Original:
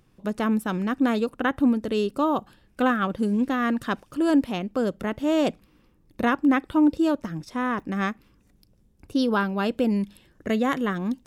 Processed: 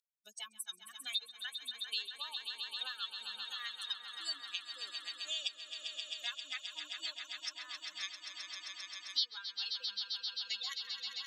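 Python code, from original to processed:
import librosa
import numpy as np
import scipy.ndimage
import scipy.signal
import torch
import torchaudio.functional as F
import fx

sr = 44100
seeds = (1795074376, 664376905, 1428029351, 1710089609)

p1 = fx.bin_expand(x, sr, power=3.0)
p2 = fx.dynamic_eq(p1, sr, hz=4000.0, q=1.7, threshold_db=-57.0, ratio=4.0, max_db=7)
p3 = fx.over_compress(p2, sr, threshold_db=-30.0, ratio=-1.0)
p4 = p2 + (p3 * librosa.db_to_amplitude(0.5))
p5 = fx.ladder_bandpass(p4, sr, hz=4700.0, resonance_pct=50)
p6 = p5 + fx.echo_swell(p5, sr, ms=132, loudest=5, wet_db=-12.0, dry=0)
p7 = fx.band_squash(p6, sr, depth_pct=70)
y = p7 * librosa.db_to_amplitude(7.5)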